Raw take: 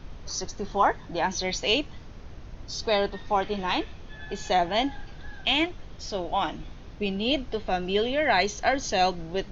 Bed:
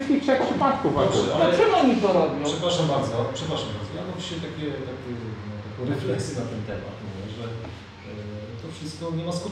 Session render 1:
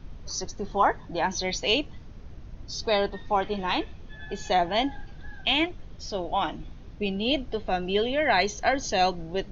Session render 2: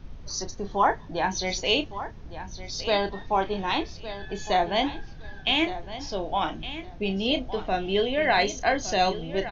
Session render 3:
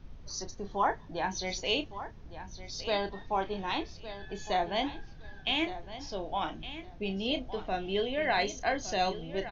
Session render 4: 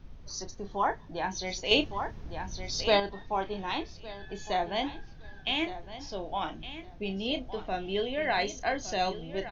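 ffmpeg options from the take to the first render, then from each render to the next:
ffmpeg -i in.wav -af "afftdn=noise_reduction=6:noise_floor=-43" out.wav
ffmpeg -i in.wav -filter_complex "[0:a]asplit=2[link_01][link_02];[link_02]adelay=31,volume=-9.5dB[link_03];[link_01][link_03]amix=inputs=2:normalize=0,aecho=1:1:1162|2324:0.224|0.0448" out.wav
ffmpeg -i in.wav -af "volume=-6.5dB" out.wav
ffmpeg -i in.wav -filter_complex "[0:a]asettb=1/sr,asplit=3[link_01][link_02][link_03];[link_01]atrim=end=1.714[link_04];[link_02]atrim=start=1.71:end=3,asetpts=PTS-STARTPTS,afade=type=in:duration=0.004:curve=qsin,afade=type=out:start_time=1.286:duration=0.004:curve=qsin,acontrast=73[link_05];[link_03]atrim=start=2.996[link_06];[link_04][link_05]acrossfade=duration=0.004:curve1=hsin:curve2=qsin[link_07];[link_07][link_06]acrossfade=duration=0.004:curve1=qsin:curve2=hsin" out.wav

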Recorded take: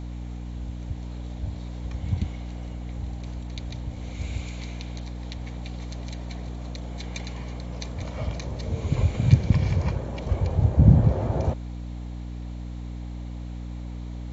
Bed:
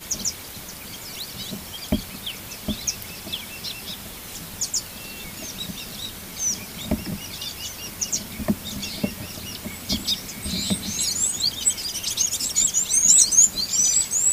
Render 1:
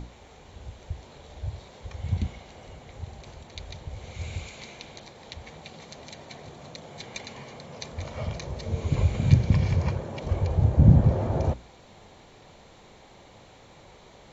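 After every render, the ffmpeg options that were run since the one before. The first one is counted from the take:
ffmpeg -i in.wav -af "bandreject=frequency=60:width_type=h:width=6,bandreject=frequency=120:width_type=h:width=6,bandreject=frequency=180:width_type=h:width=6,bandreject=frequency=240:width_type=h:width=6,bandreject=frequency=300:width_type=h:width=6" out.wav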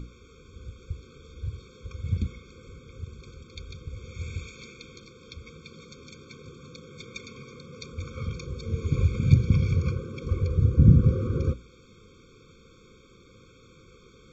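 ffmpeg -i in.wav -af "afftfilt=real='re*eq(mod(floor(b*sr/1024/530),2),0)':imag='im*eq(mod(floor(b*sr/1024/530),2),0)':win_size=1024:overlap=0.75" out.wav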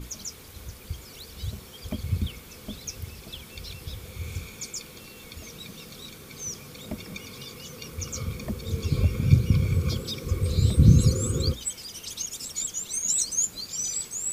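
ffmpeg -i in.wav -i bed.wav -filter_complex "[1:a]volume=-11dB[link_01];[0:a][link_01]amix=inputs=2:normalize=0" out.wav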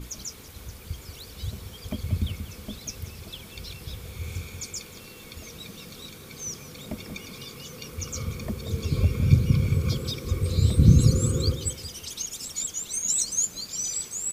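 ffmpeg -i in.wav -filter_complex "[0:a]asplit=2[link_01][link_02];[link_02]adelay=183,lowpass=frequency=2000:poles=1,volume=-8.5dB,asplit=2[link_03][link_04];[link_04]adelay=183,lowpass=frequency=2000:poles=1,volume=0.35,asplit=2[link_05][link_06];[link_06]adelay=183,lowpass=frequency=2000:poles=1,volume=0.35,asplit=2[link_07][link_08];[link_08]adelay=183,lowpass=frequency=2000:poles=1,volume=0.35[link_09];[link_01][link_03][link_05][link_07][link_09]amix=inputs=5:normalize=0" out.wav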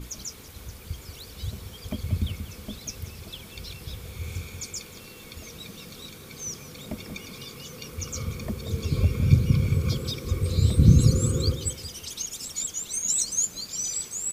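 ffmpeg -i in.wav -af anull out.wav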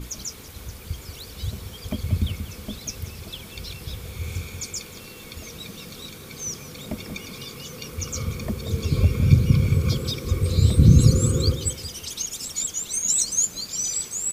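ffmpeg -i in.wav -af "volume=3.5dB,alimiter=limit=-3dB:level=0:latency=1" out.wav

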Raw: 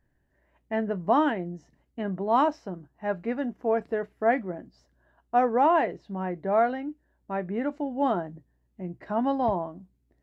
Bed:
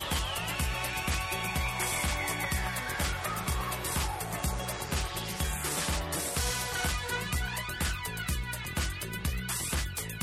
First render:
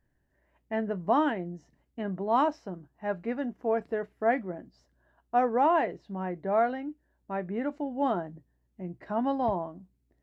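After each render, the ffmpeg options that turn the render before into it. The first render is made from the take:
ffmpeg -i in.wav -af "volume=-2.5dB" out.wav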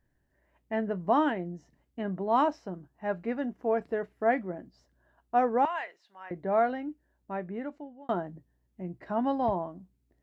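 ffmpeg -i in.wav -filter_complex "[0:a]asettb=1/sr,asplit=3[link_01][link_02][link_03];[link_01]atrim=end=5.654[link_04];[link_02]atrim=start=5.65:end=6.31,asetpts=PTS-STARTPTS,afade=type=in:duration=0.004:curve=qsin,afade=type=out:start_time=0.656:duration=0.004:curve=qsin,highpass=1400[link_05];[link_03]atrim=start=6.306[link_06];[link_04][link_05]acrossfade=duration=0.004:curve1=hsin:curve2=qsin[link_07];[link_07][link_06]acrossfade=duration=0.004:curve1=qsin:curve2=hsin,asplit=2[link_08][link_09];[link_08]atrim=end=8.09,asetpts=PTS-STARTPTS,afade=type=out:start_time=6.86:duration=1.23:curve=qsin[link_10];[link_09]atrim=start=8.09,asetpts=PTS-STARTPTS,afade=type=in:duration=0.004:curve=hsin[link_11];[link_10][link_11]concat=n=2:v=0:a=1" out.wav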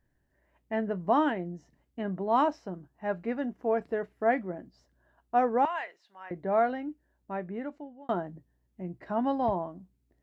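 ffmpeg -i in.wav -af anull out.wav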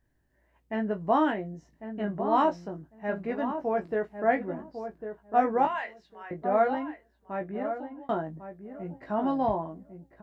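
ffmpeg -i in.wav -filter_complex "[0:a]asplit=2[link_01][link_02];[link_02]adelay=19,volume=-5dB[link_03];[link_01][link_03]amix=inputs=2:normalize=0,asplit=2[link_04][link_05];[link_05]adelay=1100,lowpass=frequency=1100:poles=1,volume=-8dB,asplit=2[link_06][link_07];[link_07]adelay=1100,lowpass=frequency=1100:poles=1,volume=0.17,asplit=2[link_08][link_09];[link_09]adelay=1100,lowpass=frequency=1100:poles=1,volume=0.17[link_10];[link_04][link_06][link_08][link_10]amix=inputs=4:normalize=0" out.wav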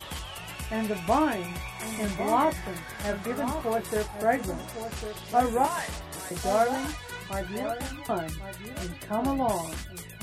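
ffmpeg -i in.wav -i bed.wav -filter_complex "[1:a]volume=-6dB[link_01];[0:a][link_01]amix=inputs=2:normalize=0" out.wav

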